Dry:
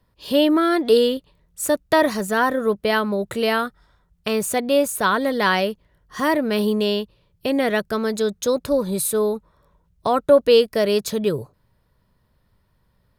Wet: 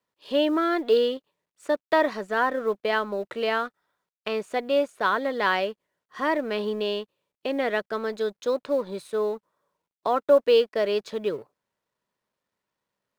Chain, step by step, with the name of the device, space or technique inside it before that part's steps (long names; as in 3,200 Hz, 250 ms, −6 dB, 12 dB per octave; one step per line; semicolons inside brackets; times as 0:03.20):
phone line with mismatched companding (band-pass filter 320–3,400 Hz; mu-law and A-law mismatch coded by A)
level −3.5 dB